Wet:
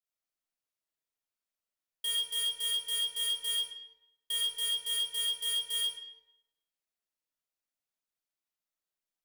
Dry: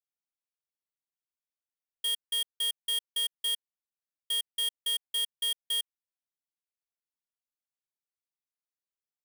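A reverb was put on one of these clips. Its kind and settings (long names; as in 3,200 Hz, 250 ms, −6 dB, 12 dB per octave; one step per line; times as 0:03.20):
comb and all-pass reverb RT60 0.88 s, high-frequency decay 0.8×, pre-delay 0 ms, DRR −4.5 dB
level −3.5 dB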